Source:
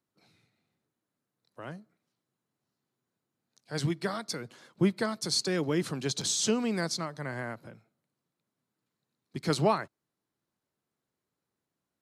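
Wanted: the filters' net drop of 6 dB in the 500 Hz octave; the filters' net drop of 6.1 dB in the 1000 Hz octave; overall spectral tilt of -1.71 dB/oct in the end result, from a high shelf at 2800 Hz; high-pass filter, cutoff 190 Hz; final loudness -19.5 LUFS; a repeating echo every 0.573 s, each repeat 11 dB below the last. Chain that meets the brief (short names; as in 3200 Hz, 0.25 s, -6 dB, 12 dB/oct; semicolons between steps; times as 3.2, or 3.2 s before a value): HPF 190 Hz; bell 500 Hz -6.5 dB; bell 1000 Hz -7.5 dB; high shelf 2800 Hz +9 dB; feedback echo 0.573 s, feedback 28%, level -11 dB; gain +9 dB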